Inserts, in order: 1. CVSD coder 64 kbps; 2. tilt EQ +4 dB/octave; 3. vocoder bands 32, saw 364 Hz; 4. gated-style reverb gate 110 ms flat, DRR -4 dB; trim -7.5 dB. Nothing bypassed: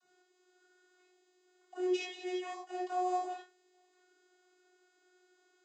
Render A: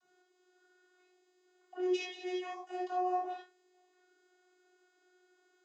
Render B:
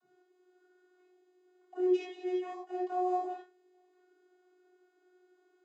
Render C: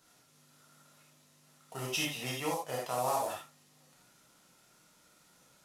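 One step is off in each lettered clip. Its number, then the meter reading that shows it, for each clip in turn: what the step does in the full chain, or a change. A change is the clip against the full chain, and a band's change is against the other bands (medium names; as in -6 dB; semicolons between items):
1, 8 kHz band -3.5 dB; 2, 4 kHz band -10.5 dB; 3, 8 kHz band +13.5 dB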